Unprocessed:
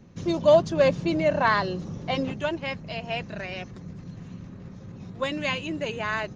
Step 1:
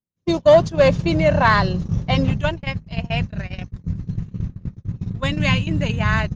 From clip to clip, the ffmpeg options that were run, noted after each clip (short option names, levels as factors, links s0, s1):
-af "asubboost=boost=12:cutoff=120,acontrast=89,agate=range=0.00316:threshold=0.112:ratio=16:detection=peak"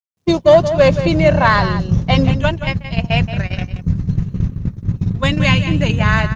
-filter_complex "[0:a]asplit=2[s0][s1];[s1]adelay=174.9,volume=0.282,highshelf=f=4000:g=-3.94[s2];[s0][s2]amix=inputs=2:normalize=0,dynaudnorm=f=140:g=3:m=2.66,acrusher=bits=11:mix=0:aa=0.000001"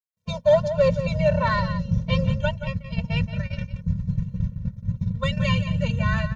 -af "afftfilt=real='re*eq(mod(floor(b*sr/1024/220),2),0)':imag='im*eq(mod(floor(b*sr/1024/220),2),0)':win_size=1024:overlap=0.75,volume=0.422"